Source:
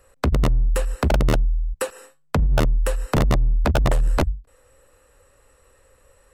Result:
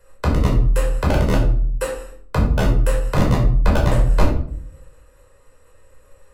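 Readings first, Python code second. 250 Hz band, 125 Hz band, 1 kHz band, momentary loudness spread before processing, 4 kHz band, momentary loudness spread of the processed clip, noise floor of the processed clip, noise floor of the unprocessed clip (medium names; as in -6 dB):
+4.0 dB, +4.0 dB, +2.5 dB, 7 LU, +0.5 dB, 8 LU, -52 dBFS, -59 dBFS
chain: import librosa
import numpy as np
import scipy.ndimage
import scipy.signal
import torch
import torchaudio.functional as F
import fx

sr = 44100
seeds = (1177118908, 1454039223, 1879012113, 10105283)

p1 = fx.level_steps(x, sr, step_db=11)
p2 = x + (p1 * librosa.db_to_amplitude(-2.0))
p3 = fx.room_shoebox(p2, sr, seeds[0], volume_m3=680.0, walls='furnished', distance_m=5.0)
y = p3 * librosa.db_to_amplitude(-8.5)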